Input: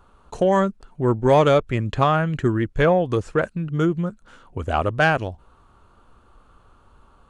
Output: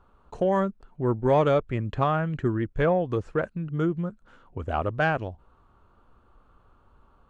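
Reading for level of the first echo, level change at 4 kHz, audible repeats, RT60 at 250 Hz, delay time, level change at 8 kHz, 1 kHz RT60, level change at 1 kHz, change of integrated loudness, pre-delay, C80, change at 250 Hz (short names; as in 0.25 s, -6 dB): none, -10.0 dB, none, none, none, n/a, none, -6.0 dB, -5.5 dB, none, none, -5.0 dB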